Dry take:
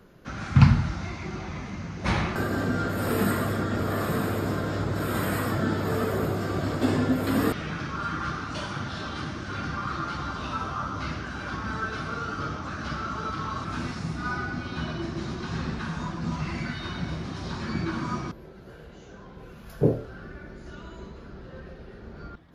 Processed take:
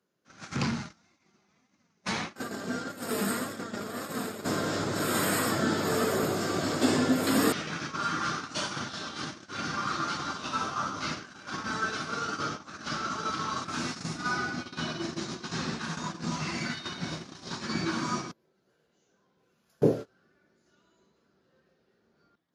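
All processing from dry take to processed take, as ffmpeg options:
-filter_complex "[0:a]asettb=1/sr,asplit=3[a][b][c];[a]atrim=end=0.564[d];[b]atrim=start=0.56:end=4.45,asetpts=PTS-STARTPTS,afade=t=in:d=0.004:c=qsin,afade=t=out:st=3.886:d=0.004:c=qsin,agate=range=-33dB:threshold=-32dB:ratio=3:release=100:detection=peak,flanger=delay=3.5:depth=1.5:regen=47:speed=1.7:shape=triangular,aeval=exprs='(tanh(8.91*val(0)+0.3)-tanh(0.3))/8.91':c=same[e];[c]atrim=start=4.446[f];[d][e]acrossfade=d=0.004:c1=hsin:c2=qsin[g];[g][f]acrossfade=d=0.004:c1=qsin:c2=hsin,equalizer=f=6.8k:t=o:w=1.6:g=11,agate=range=-24dB:threshold=-31dB:ratio=16:detection=peak,highpass=180"

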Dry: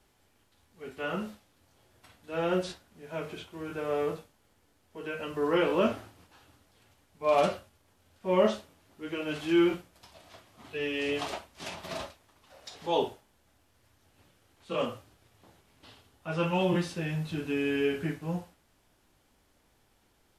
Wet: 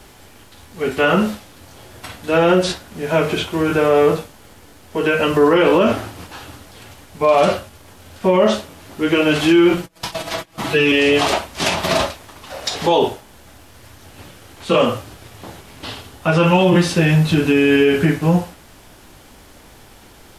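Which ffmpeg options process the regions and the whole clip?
-filter_complex "[0:a]asettb=1/sr,asplit=3[a][b][c];[a]atrim=end=9.774[d];[b]atrim=start=9.77:end=10.92,asetpts=PTS-STARTPTS,afade=t=in:d=0.004:c=qsin,afade=t=out:st=1.146:d=0.004:c=qsin,agate=range=-34dB:threshold=-56dB:ratio=16:release=100:detection=peak,aecho=1:1:6.1:0.83,atrim=end_sample=50715,acompressor=mode=upward:threshold=-40dB:ratio=2.5:attack=3.2:release=140:knee=2.83:detection=peak[e];[c]atrim=start=10.916[f];[d][e]acrossfade=d=0.004:c1=hsin:c2=qsin[g];[g][f]acrossfade=d=0.004:c1=qsin:c2=hsin,acompressor=threshold=-42dB:ratio=1.5,alimiter=level_in=27.5dB:limit=-1dB:release=50:level=0:latency=1,volume=-4dB"

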